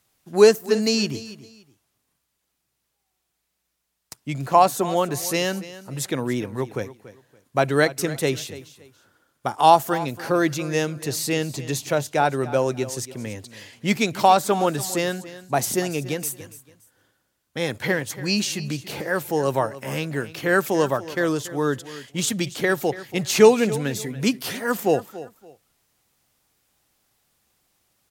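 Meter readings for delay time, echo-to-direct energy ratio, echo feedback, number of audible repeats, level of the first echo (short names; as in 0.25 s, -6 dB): 0.284 s, -16.0 dB, 25%, 2, -16.0 dB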